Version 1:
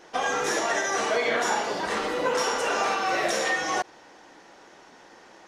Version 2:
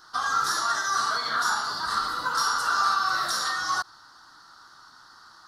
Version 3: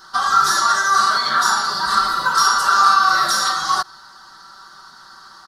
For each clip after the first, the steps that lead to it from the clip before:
FFT filter 130 Hz 0 dB, 190 Hz -10 dB, 280 Hz -12 dB, 500 Hz -21 dB, 840 Hz -8 dB, 1.3 kHz +11 dB, 2.4 kHz -21 dB, 4.4 kHz +11 dB, 6.6 kHz -4 dB, 11 kHz +7 dB
comb 5.2 ms, depth 72%; trim +7 dB

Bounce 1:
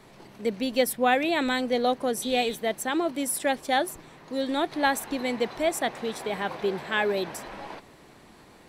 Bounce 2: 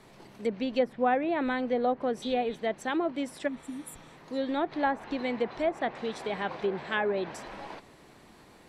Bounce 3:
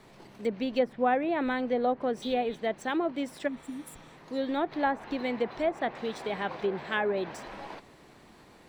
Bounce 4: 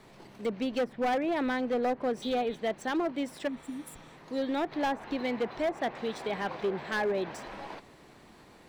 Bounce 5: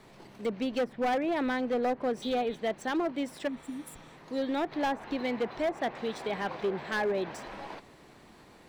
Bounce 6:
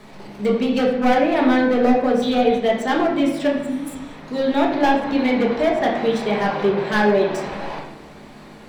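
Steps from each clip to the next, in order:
spectral replace 3.50–4.06 s, 320–7000 Hz after; low-pass that closes with the level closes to 1.4 kHz, closed at -20.5 dBFS; trim -2.5 dB
median filter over 3 samples
overload inside the chain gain 24.5 dB
no audible change
reverberation RT60 0.90 s, pre-delay 5 ms, DRR -2 dB; trim +8 dB

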